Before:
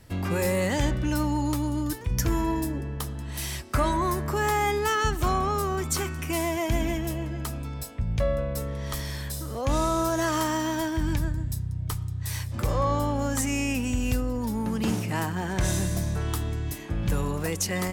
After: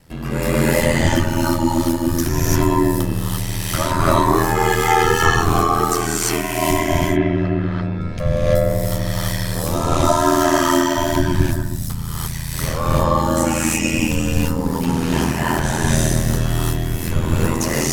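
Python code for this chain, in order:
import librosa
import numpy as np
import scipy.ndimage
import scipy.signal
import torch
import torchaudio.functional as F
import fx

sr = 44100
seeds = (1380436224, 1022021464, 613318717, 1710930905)

y = fx.cabinet(x, sr, low_hz=110.0, low_slope=12, high_hz=3200.0, hz=(160.0, 350.0, 910.0, 1600.0, 2800.0), db=(10, 4, -4, 4, -7), at=(6.8, 7.98), fade=0.02)
y = fx.dmg_crackle(y, sr, seeds[0], per_s=370.0, level_db=-44.0, at=(10.93, 11.76), fade=0.02)
y = fx.rev_gated(y, sr, seeds[1], gate_ms=370, shape='rising', drr_db=-8.0)
y = y * np.sin(2.0 * np.pi * 41.0 * np.arange(len(y)) / sr)
y = y * librosa.db_to_amplitude(4.0)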